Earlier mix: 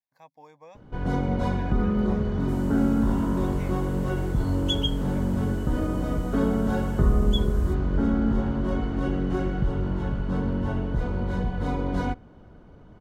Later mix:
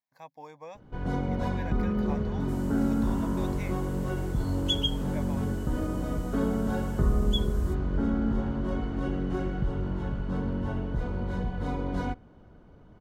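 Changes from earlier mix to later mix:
speech +4.5 dB; first sound -4.0 dB

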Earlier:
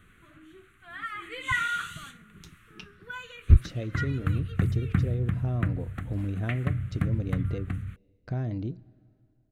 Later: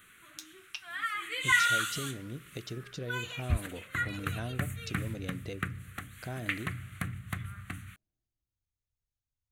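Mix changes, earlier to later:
speech: entry -2.05 s; master: add tilt +3.5 dB/oct

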